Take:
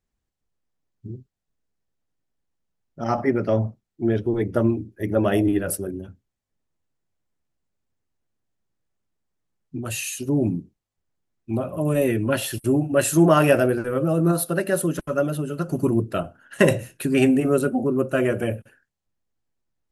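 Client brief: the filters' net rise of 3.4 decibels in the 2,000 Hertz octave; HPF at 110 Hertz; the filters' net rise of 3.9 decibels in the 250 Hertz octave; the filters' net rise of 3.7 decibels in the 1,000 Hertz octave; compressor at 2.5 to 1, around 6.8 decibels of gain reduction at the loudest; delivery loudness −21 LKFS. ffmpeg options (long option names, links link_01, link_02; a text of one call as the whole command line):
ffmpeg -i in.wav -af "highpass=110,equalizer=frequency=250:width_type=o:gain=5,equalizer=frequency=1000:width_type=o:gain=4,equalizer=frequency=2000:width_type=o:gain=3,acompressor=threshold=-19dB:ratio=2.5,volume=2.5dB" out.wav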